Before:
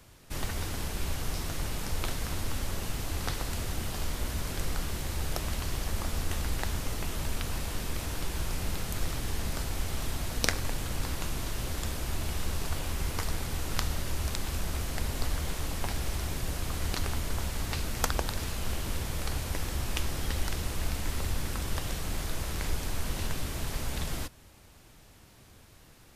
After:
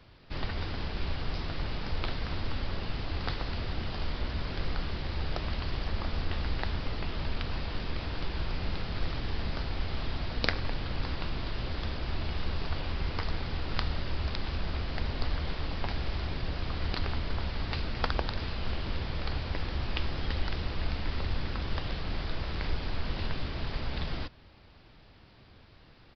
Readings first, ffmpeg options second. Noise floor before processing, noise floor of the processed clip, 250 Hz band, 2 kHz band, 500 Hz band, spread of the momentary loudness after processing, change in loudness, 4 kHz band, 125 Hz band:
−55 dBFS, −55 dBFS, 0.0 dB, 0.0 dB, 0.0 dB, 3 LU, −1.0 dB, −0.5 dB, 0.0 dB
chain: -af "aresample=11025,aresample=44100"

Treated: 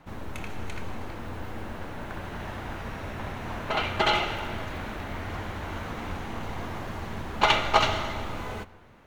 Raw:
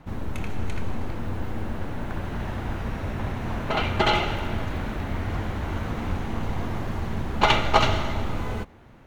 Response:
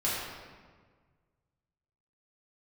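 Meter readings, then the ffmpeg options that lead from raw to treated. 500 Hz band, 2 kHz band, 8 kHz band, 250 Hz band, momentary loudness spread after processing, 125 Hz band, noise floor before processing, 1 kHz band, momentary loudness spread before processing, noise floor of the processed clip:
−3.0 dB, −1.0 dB, can't be measured, −6.5 dB, 15 LU, −8.0 dB, −48 dBFS, −1.5 dB, 12 LU, −49 dBFS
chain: -filter_complex "[0:a]lowshelf=frequency=350:gain=-8.5,asplit=2[link_01][link_02];[1:a]atrim=start_sample=2205[link_03];[link_02][link_03]afir=irnorm=-1:irlink=0,volume=-25dB[link_04];[link_01][link_04]amix=inputs=2:normalize=0,volume=-1dB"

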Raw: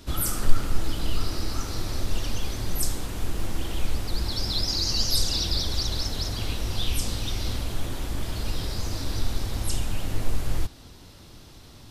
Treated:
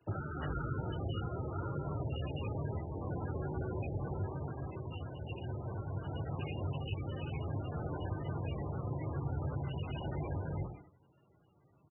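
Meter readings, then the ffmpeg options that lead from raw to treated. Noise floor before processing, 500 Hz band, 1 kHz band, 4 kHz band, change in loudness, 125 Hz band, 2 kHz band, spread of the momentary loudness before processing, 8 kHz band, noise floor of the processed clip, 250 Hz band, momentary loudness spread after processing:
−47 dBFS, −3.0 dB, −5.0 dB, −25.5 dB, −10.0 dB, −4.5 dB, −11.0 dB, 9 LU, below −40 dB, −68 dBFS, −5.5 dB, 4 LU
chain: -filter_complex "[0:a]agate=range=-19dB:threshold=-37dB:ratio=16:detection=peak,highpass=52,equalizer=frequency=190:width_type=o:width=0.45:gain=-7,acompressor=threshold=-35dB:ratio=5,acrusher=bits=9:mode=log:mix=0:aa=0.000001,afreqshift=41,asplit=2[link_01][link_02];[link_02]adelay=75,lowpass=frequency=2800:poles=1,volume=-6.5dB,asplit=2[link_03][link_04];[link_04]adelay=75,lowpass=frequency=2800:poles=1,volume=0.25,asplit=2[link_05][link_06];[link_06]adelay=75,lowpass=frequency=2800:poles=1,volume=0.25[link_07];[link_01][link_03][link_05][link_07]amix=inputs=4:normalize=0,volume=1dB" -ar 24000 -c:a libmp3lame -b:a 8k

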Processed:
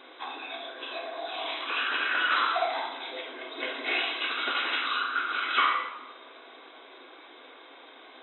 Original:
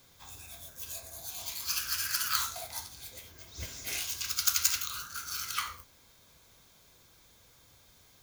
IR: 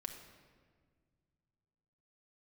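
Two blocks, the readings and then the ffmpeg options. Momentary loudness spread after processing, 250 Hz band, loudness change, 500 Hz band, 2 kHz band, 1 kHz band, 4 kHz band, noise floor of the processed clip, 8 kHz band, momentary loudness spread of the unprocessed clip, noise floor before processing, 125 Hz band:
24 LU, +14.5 dB, +3.0 dB, +18.0 dB, +13.0 dB, +13.5 dB, +4.5 dB, −51 dBFS, below −40 dB, 18 LU, −61 dBFS, below −30 dB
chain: -filter_complex "[0:a]lowshelf=frequency=400:gain=4.5[link_01];[1:a]atrim=start_sample=2205,asetrate=79380,aresample=44100[link_02];[link_01][link_02]afir=irnorm=-1:irlink=0,asplit=2[link_03][link_04];[link_04]highpass=frequency=720:poles=1,volume=29dB,asoftclip=type=tanh:threshold=-13dB[link_05];[link_03][link_05]amix=inputs=2:normalize=0,lowpass=frequency=1700:poles=1,volume=-6dB,afftfilt=real='re*between(b*sr/4096,240,4000)':imag='im*between(b*sr/4096,240,4000)':win_size=4096:overlap=0.75,volume=5dB"

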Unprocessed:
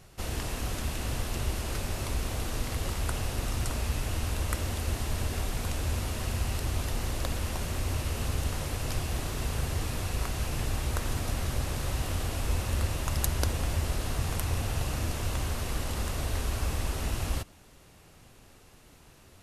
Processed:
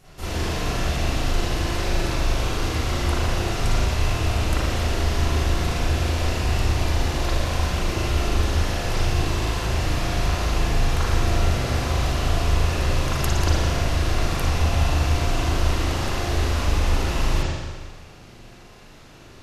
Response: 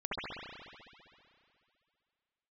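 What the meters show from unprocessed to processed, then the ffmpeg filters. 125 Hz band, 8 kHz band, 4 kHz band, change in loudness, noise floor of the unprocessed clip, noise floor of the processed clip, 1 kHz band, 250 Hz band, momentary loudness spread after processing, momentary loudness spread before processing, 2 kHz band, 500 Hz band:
+8.5 dB, +4.0 dB, +9.5 dB, +8.5 dB, −55 dBFS, −45 dBFS, +10.5 dB, +9.5 dB, 3 LU, 3 LU, +10.0 dB, +10.5 dB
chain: -filter_complex "[0:a]bandreject=frequency=50:width_type=h:width=6,bandreject=frequency=100:width_type=h:width=6,asplit=2[link_01][link_02];[link_02]asoftclip=type=tanh:threshold=-26.5dB,volume=-9dB[link_03];[link_01][link_03]amix=inputs=2:normalize=0[link_04];[1:a]atrim=start_sample=2205,asetrate=74970,aresample=44100[link_05];[link_04][link_05]afir=irnorm=-1:irlink=0,volume=5.5dB"

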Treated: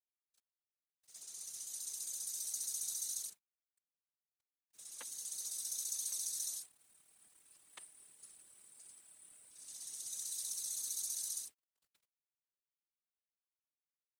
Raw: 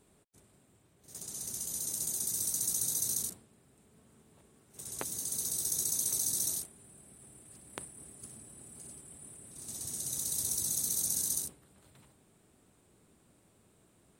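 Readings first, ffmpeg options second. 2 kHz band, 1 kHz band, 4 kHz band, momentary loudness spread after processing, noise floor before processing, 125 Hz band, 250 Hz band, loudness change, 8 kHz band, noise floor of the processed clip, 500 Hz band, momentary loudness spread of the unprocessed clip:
−8.5 dB, −13.5 dB, −5.0 dB, 19 LU, −67 dBFS, below −30 dB, below −25 dB, −8.0 dB, −7.5 dB, below −85 dBFS, below −15 dB, 19 LU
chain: -af "bandpass=frequency=4400:width_type=q:width=0.56:csg=0,aeval=exprs='val(0)*gte(abs(val(0)),0.00112)':channel_layout=same,afftfilt=real='hypot(re,im)*cos(2*PI*random(0))':imag='hypot(re,im)*sin(2*PI*random(1))':win_size=512:overlap=0.75,volume=1dB"

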